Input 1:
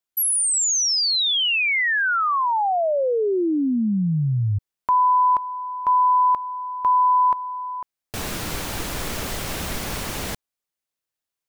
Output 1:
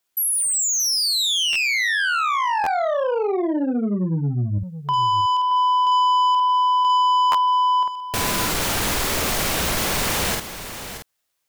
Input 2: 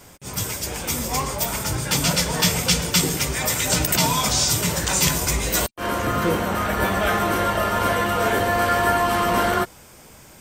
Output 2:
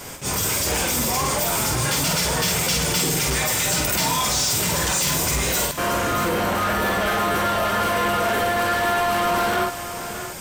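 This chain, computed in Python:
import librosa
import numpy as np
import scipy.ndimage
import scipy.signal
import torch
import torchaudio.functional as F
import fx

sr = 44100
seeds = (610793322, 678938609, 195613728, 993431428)

p1 = fx.low_shelf(x, sr, hz=330.0, db=-5.0)
p2 = fx.over_compress(p1, sr, threshold_db=-31.0, ratio=-1.0)
p3 = p1 + (p2 * 10.0 ** (1.0 / 20.0))
p4 = fx.doubler(p3, sr, ms=49.0, db=-4.5)
p5 = 10.0 ** (-17.5 / 20.0) * np.tanh(p4 / 10.0 ** (-17.5 / 20.0))
p6 = p5 + fx.echo_single(p5, sr, ms=626, db=-11.0, dry=0)
y = fx.buffer_glitch(p6, sr, at_s=(1.52, 2.63, 7.31), block=512, repeats=2)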